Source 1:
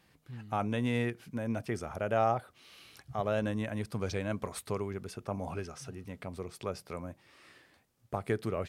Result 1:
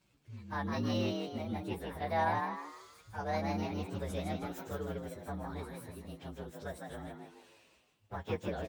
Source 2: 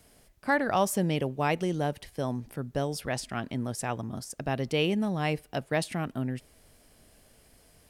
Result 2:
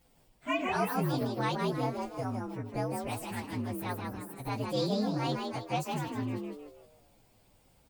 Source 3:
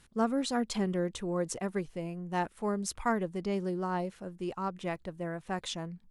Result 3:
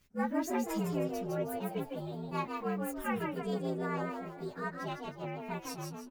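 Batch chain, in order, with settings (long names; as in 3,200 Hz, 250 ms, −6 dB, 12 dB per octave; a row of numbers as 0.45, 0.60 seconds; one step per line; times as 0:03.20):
partials spread apart or drawn together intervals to 118%
echo with shifted repeats 157 ms, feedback 39%, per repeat +90 Hz, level −4.5 dB
level −2.5 dB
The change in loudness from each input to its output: −3.0, −3.0, −2.5 LU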